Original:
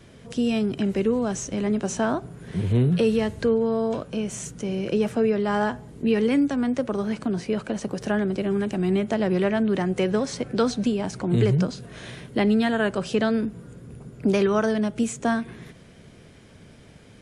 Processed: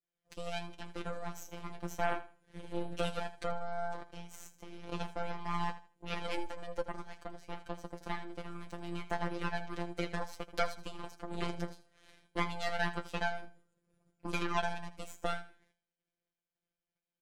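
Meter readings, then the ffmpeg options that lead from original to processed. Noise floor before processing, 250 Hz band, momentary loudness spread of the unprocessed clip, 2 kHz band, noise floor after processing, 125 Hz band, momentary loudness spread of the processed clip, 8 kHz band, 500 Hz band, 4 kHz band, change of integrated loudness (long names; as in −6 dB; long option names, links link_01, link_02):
−49 dBFS, −21.5 dB, 9 LU, −8.0 dB, below −85 dBFS, −18.0 dB, 12 LU, −16.0 dB, −17.0 dB, −9.0 dB, −15.5 dB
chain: -filter_complex "[0:a]agate=range=-33dB:threshold=-35dB:ratio=3:detection=peak,equalizer=frequency=140:width=0.83:gain=-11,asplit=2[link_01][link_02];[link_02]acompressor=threshold=-37dB:ratio=6,volume=-1dB[link_03];[link_01][link_03]amix=inputs=2:normalize=0,aeval=exprs='0.299*(cos(1*acos(clip(val(0)/0.299,-1,1)))-cos(1*PI/2))+0.0944*(cos(3*acos(clip(val(0)/0.299,-1,1)))-cos(3*PI/2))+0.00237*(cos(4*acos(clip(val(0)/0.299,-1,1)))-cos(4*PI/2))+0.00944*(cos(6*acos(clip(val(0)/0.299,-1,1)))-cos(6*PI/2))':channel_layout=same,flanger=delay=7:depth=8.7:regen=41:speed=0.28:shape=sinusoidal,afftfilt=real='hypot(re,im)*cos(PI*b)':imag='0':win_size=1024:overlap=0.75,asoftclip=type=tanh:threshold=-20dB,aecho=1:1:80|160|240:0.178|0.0427|0.0102,volume=6.5dB"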